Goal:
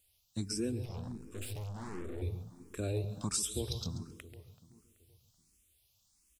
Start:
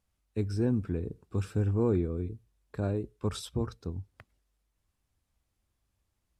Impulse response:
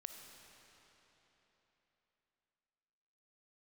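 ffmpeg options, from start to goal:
-filter_complex "[0:a]asplit=2[s0][s1];[s1]lowshelf=f=180:g=10[s2];[1:a]atrim=start_sample=2205,afade=t=out:st=0.28:d=0.01,atrim=end_sample=12789,adelay=136[s3];[s2][s3]afir=irnorm=-1:irlink=0,volume=0.447[s4];[s0][s4]amix=inputs=2:normalize=0,aexciter=amount=6.5:drive=3.8:freq=2500,asettb=1/sr,asplit=3[s5][s6][s7];[s5]atrim=end=0.854[s8];[s6]atrim=start=0.85:end=2.22,asetpts=PTS-STARTPTS,afade=t=in:d=0.004:c=qsin,afade=t=out:st=1.366:d=0.004:c=qsin,aeval=exprs='(tanh(79.4*val(0)+0.7)-tanh(0.7))/79.4':c=same[s9];[s7]atrim=start=2.216[s10];[s8][s9]acrossfade=d=0.004:c1=hsin:c2=qsin[s11];[s11][s10]acrossfade=d=0.004:c1=qsin:c2=hsin,asettb=1/sr,asplit=3[s12][s13][s14];[s12]atrim=end=2.974[s15];[s13]atrim=start=2.97:end=3.97,asetpts=PTS-STARTPTS,afade=t=in:d=0.004:c=qsin,afade=t=out:st=0.996:d=0.004:c=qsin,acompressor=mode=upward:threshold=0.0282:ratio=2.5[s16];[s14]atrim=start=3.966[s17];[s15][s16]acrossfade=d=0.004:c1=hsin:c2=qsin[s18];[s18][s17]acrossfade=d=0.004:c1=qsin:c2=hsin,asplit=2[s19][s20];[s20]adelay=381,lowpass=f=1700:p=1,volume=0.158,asplit=2[s21][s22];[s22]adelay=381,lowpass=f=1700:p=1,volume=0.45,asplit=2[s23][s24];[s24]adelay=381,lowpass=f=1700:p=1,volume=0.45,asplit=2[s25][s26];[s26]adelay=381,lowpass=f=1700:p=1,volume=0.45[s27];[s19][s21][s23][s25][s27]amix=inputs=5:normalize=0,acompressor=threshold=0.0398:ratio=5,asplit=2[s28][s29];[s29]afreqshift=1.4[s30];[s28][s30]amix=inputs=2:normalize=1"

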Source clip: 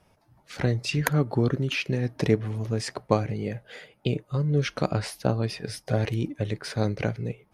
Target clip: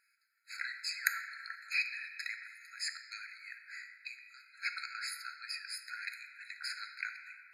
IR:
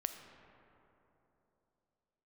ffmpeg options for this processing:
-filter_complex "[1:a]atrim=start_sample=2205,asetrate=66150,aresample=44100[s0];[0:a][s0]afir=irnorm=-1:irlink=0,afftfilt=real='re*eq(mod(floor(b*sr/1024/1300),2),1)':imag='im*eq(mod(floor(b*sr/1024/1300),2),1)':win_size=1024:overlap=0.75,volume=1.41"

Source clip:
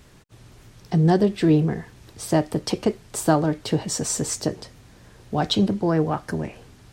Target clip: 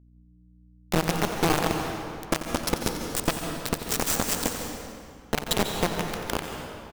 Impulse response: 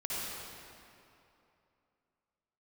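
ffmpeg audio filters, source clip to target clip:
-filter_complex "[0:a]acompressor=threshold=0.0631:ratio=10,asplit=7[s0][s1][s2][s3][s4][s5][s6];[s1]adelay=184,afreqshift=-37,volume=0.133[s7];[s2]adelay=368,afreqshift=-74,volume=0.0822[s8];[s3]adelay=552,afreqshift=-111,volume=0.0513[s9];[s4]adelay=736,afreqshift=-148,volume=0.0316[s10];[s5]adelay=920,afreqshift=-185,volume=0.0197[s11];[s6]adelay=1104,afreqshift=-222,volume=0.0122[s12];[s0][s7][s8][s9][s10][s11][s12]amix=inputs=7:normalize=0,acrusher=bits=3:mix=0:aa=0.000001,aeval=exprs='val(0)+0.002*(sin(2*PI*60*n/s)+sin(2*PI*2*60*n/s)/2+sin(2*PI*3*60*n/s)/3+sin(2*PI*4*60*n/s)/4+sin(2*PI*5*60*n/s)/5)':c=same,aeval=exprs='0.299*(cos(1*acos(clip(val(0)/0.299,-1,1)))-cos(1*PI/2))+0.0668*(cos(2*acos(clip(val(0)/0.299,-1,1)))-cos(2*PI/2))+0.0841*(cos(8*acos(clip(val(0)/0.299,-1,1)))-cos(8*PI/2))':c=same,asplit=2[s13][s14];[1:a]atrim=start_sample=2205,asetrate=52920,aresample=44100,adelay=89[s15];[s14][s15]afir=irnorm=-1:irlink=0,volume=0.501[s16];[s13][s16]amix=inputs=2:normalize=0"

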